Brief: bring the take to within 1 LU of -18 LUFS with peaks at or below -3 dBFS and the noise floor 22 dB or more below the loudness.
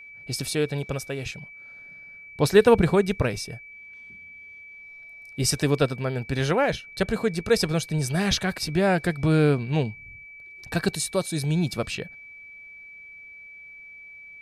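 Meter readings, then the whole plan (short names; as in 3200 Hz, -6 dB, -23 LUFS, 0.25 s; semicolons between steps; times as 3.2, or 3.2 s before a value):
steady tone 2300 Hz; tone level -42 dBFS; loudness -24.5 LUFS; peak -5.0 dBFS; loudness target -18.0 LUFS
-> notch 2300 Hz, Q 30; gain +6.5 dB; limiter -3 dBFS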